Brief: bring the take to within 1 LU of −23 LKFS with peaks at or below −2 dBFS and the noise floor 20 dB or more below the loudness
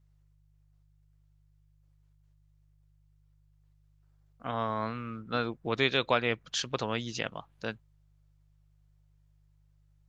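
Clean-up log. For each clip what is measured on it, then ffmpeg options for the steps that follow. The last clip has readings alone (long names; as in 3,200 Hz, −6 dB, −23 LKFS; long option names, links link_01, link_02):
mains hum 50 Hz; hum harmonics up to 150 Hz; level of the hum −62 dBFS; integrated loudness −32.0 LKFS; sample peak −10.0 dBFS; target loudness −23.0 LKFS
→ -af "bandreject=frequency=50:width_type=h:width=4,bandreject=frequency=100:width_type=h:width=4,bandreject=frequency=150:width_type=h:width=4"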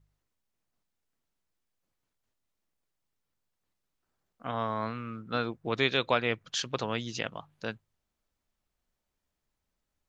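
mains hum none found; integrated loudness −32.0 LKFS; sample peak −10.0 dBFS; target loudness −23.0 LKFS
→ -af "volume=9dB,alimiter=limit=-2dB:level=0:latency=1"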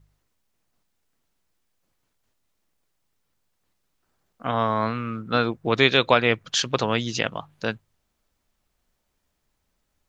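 integrated loudness −23.0 LKFS; sample peak −2.0 dBFS; background noise floor −75 dBFS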